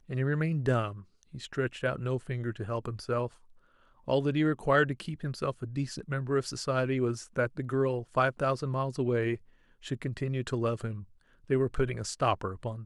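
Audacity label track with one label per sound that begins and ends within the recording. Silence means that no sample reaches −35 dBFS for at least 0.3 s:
1.350000	3.270000	sound
4.080000	9.350000	sound
9.860000	11.000000	sound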